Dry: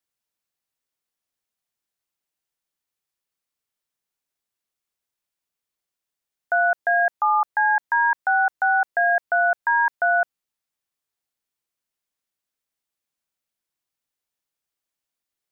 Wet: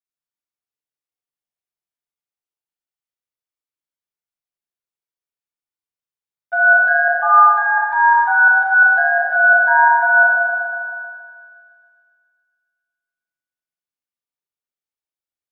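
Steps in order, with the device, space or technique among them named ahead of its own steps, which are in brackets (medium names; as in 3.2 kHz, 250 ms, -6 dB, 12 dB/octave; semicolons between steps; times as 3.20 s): gate -22 dBFS, range -15 dB; stairwell (reverberation RT60 1.8 s, pre-delay 26 ms, DRR -2 dB); thinning echo 138 ms, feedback 81%, high-pass 1.1 kHz, level -8 dB; spring tank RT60 1.5 s, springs 39 ms, chirp 25 ms, DRR 3 dB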